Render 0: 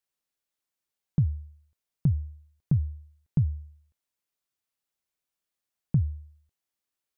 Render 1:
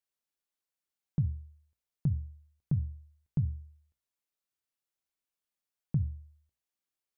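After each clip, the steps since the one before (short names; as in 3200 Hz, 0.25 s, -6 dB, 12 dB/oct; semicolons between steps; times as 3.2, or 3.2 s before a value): notches 60/120/180/240 Hz; gain -5 dB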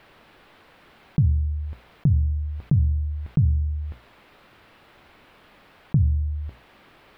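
air absorption 460 m; fast leveller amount 70%; gain +8.5 dB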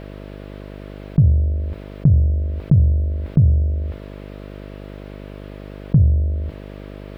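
buzz 50 Hz, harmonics 13, -41 dBFS -3 dB/oct; gain +6 dB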